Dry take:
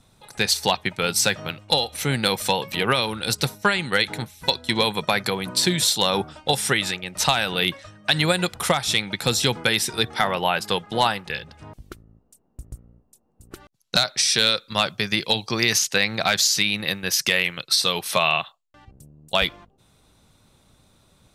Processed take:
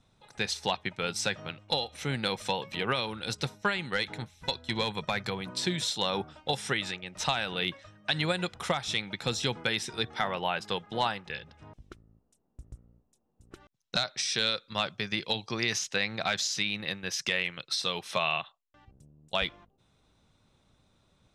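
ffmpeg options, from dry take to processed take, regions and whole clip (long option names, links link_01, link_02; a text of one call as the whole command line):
ffmpeg -i in.wav -filter_complex "[0:a]asettb=1/sr,asplit=3[link_01][link_02][link_03];[link_01]atrim=end=3.834[link_04];[link_02]atrim=start=3.83:end=5.41,asetpts=PTS-STARTPTS,afade=type=in:duration=0.004:curve=qsin,afade=type=out:start_time=1.576:duration=0.004:curve=qsin,asubboost=boost=3.5:cutoff=170,asoftclip=type=hard:threshold=-11.5dB[link_05];[link_03]atrim=start=5.406[link_06];[link_04][link_05]acrossfade=duration=0.004:curve1=hsin:curve2=qsin[link_07];[link_07][link_06]acrossfade=duration=0.004:curve1=qsin:curve2=hsin,lowpass=6100,bandreject=frequency=4500:width=12,volume=-8.5dB" out.wav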